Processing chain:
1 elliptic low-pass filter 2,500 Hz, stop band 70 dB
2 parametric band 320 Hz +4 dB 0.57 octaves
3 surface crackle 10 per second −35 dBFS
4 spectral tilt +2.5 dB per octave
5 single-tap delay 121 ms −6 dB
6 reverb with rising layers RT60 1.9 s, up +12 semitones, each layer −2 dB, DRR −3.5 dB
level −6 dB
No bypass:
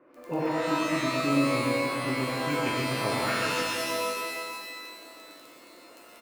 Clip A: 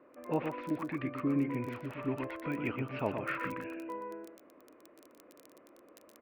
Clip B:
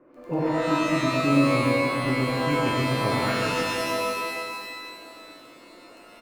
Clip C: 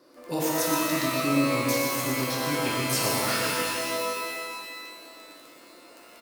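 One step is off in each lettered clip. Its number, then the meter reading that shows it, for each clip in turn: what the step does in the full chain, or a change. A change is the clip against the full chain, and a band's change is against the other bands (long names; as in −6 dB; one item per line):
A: 6, 4 kHz band −14.5 dB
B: 4, 8 kHz band −5.0 dB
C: 1, 8 kHz band +8.0 dB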